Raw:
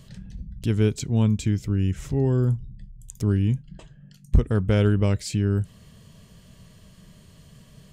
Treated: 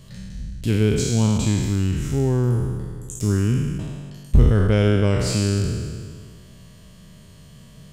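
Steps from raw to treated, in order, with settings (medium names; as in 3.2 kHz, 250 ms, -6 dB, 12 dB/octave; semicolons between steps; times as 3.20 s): spectral sustain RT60 1.91 s; trim +1 dB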